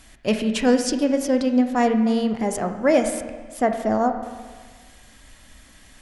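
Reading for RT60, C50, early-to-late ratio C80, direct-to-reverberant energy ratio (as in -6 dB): 1.5 s, 8.0 dB, 9.5 dB, 6.5 dB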